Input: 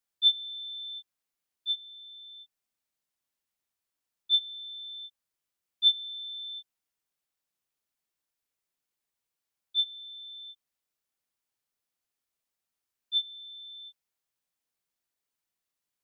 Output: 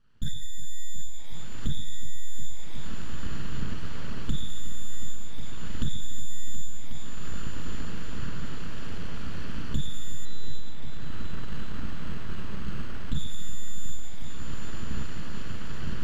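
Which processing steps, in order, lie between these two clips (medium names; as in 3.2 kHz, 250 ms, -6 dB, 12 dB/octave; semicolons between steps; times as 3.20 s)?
comb filter that takes the minimum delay 0.65 ms; recorder AGC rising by 23 dB/s; overload inside the chain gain 30 dB; peak limiter -38 dBFS, peak gain reduction 8 dB; distance through air 100 m; reverberation RT60 1.1 s, pre-delay 3 ms, DRR -1 dB; full-wave rectifier; tone controls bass +12 dB, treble -12 dB; compression 10:1, threshold -34 dBFS, peak gain reduction 8 dB; multi-head delay 364 ms, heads all three, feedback 57%, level -16 dB; 10.25–13.15 s: decimation joined by straight lines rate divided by 4×; trim +15 dB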